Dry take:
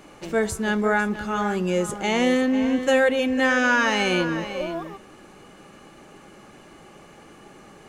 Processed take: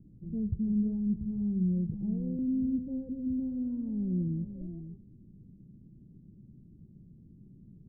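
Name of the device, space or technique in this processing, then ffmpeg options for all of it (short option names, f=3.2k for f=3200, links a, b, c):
the neighbour's flat through the wall: -filter_complex "[0:a]lowpass=f=210:w=0.5412,lowpass=f=210:w=1.3066,equalizer=f=110:t=o:w=0.77:g=5.5,asettb=1/sr,asplit=3[a][b][c];[a]atrim=end=1.924[d];[b]atrim=start=1.92:end=2.39,asetpts=PTS-STARTPTS,afade=t=in:d=0.004:c=qsin,afade=t=out:st=0.466:d=0.004:c=qsin,aecho=1:1:6.2:0.85,atrim=end_sample=20727[e];[c]atrim=start=2.386[f];[d][e]acrossfade=d=0.004:c1=hsin:c2=qsin[g];[g][f]acrossfade=d=0.004:c1=qsin:c2=hsin"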